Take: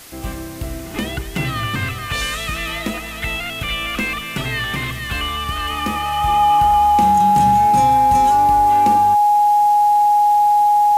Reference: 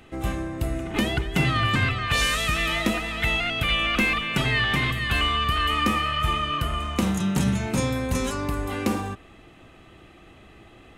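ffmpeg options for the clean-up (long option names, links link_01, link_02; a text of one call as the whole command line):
ffmpeg -i in.wav -af "bandreject=frequency=830:width=30,afwtdn=0.011" out.wav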